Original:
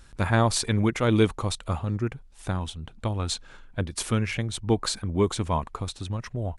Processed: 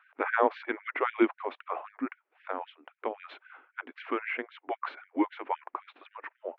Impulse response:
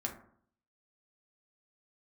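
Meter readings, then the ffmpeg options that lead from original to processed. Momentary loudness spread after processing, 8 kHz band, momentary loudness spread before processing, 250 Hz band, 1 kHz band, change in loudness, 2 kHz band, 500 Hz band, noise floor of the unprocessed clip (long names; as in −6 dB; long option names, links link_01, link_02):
18 LU, below −40 dB, 11 LU, −6.5 dB, −1.0 dB, −6.0 dB, −0.5 dB, −5.0 dB, −50 dBFS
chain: -af "highpass=frequency=180:width_type=q:width=0.5412,highpass=frequency=180:width_type=q:width=1.307,lowpass=frequency=2500:width_type=q:width=0.5176,lowpass=frequency=2500:width_type=q:width=0.7071,lowpass=frequency=2500:width_type=q:width=1.932,afreqshift=-94,afftfilt=real='re*gte(b*sr/1024,230*pow(1500/230,0.5+0.5*sin(2*PI*3.8*pts/sr)))':imag='im*gte(b*sr/1024,230*pow(1500/230,0.5+0.5*sin(2*PI*3.8*pts/sr)))':win_size=1024:overlap=0.75,volume=1dB"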